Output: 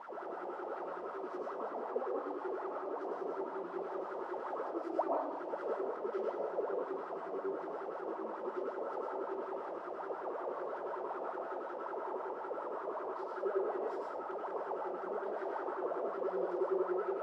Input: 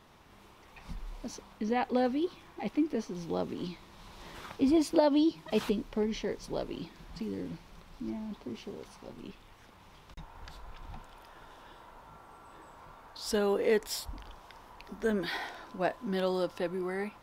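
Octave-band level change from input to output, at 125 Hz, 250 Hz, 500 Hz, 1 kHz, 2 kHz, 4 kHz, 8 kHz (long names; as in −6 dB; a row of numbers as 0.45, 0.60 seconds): below −20 dB, −11.5 dB, −2.5 dB, +1.0 dB, −7.5 dB, below −20 dB, below −25 dB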